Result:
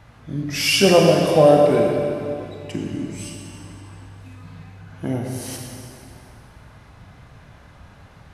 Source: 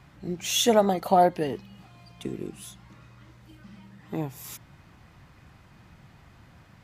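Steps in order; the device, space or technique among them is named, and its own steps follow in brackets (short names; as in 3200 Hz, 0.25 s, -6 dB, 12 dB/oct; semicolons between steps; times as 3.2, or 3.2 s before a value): slowed and reverbed (varispeed -18%; reverb RT60 2.6 s, pre-delay 21 ms, DRR 0 dB); gain +5 dB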